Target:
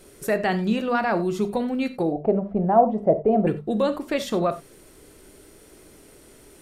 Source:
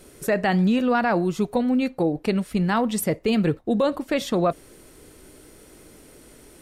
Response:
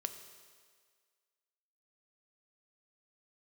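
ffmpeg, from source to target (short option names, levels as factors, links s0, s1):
-filter_complex "[0:a]asettb=1/sr,asplit=3[s0][s1][s2];[s0]atrim=end=2.124[s3];[s1]atrim=start=2.12:end=3.47,asetpts=PTS-STARTPTS,afade=t=in:d=0.004:c=qsin,afade=t=out:st=1.346:d=0.004:c=qsin,lowpass=f=690:t=q:w=5.8[s4];[s2]atrim=start=3.466[s5];[s3][s4]acrossfade=d=0.004:c1=hsin:c2=qsin[s6];[s6][s5]acrossfade=d=0.004:c1=qsin:c2=hsin,bandreject=f=50:t=h:w=6,bandreject=f=100:t=h:w=6,bandreject=f=150:t=h:w=6,bandreject=f=200:t=h:w=6,bandreject=f=250:t=h:w=6[s7];[1:a]atrim=start_sample=2205,atrim=end_sample=4410[s8];[s7][s8]afir=irnorm=-1:irlink=0"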